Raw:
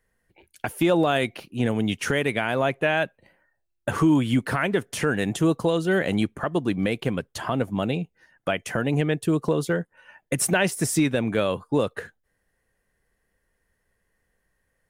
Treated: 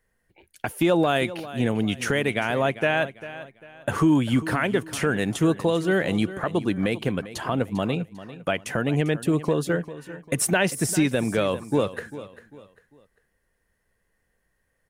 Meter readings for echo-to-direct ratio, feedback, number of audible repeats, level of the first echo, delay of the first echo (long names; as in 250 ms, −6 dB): −14.5 dB, 34%, 3, −15.0 dB, 397 ms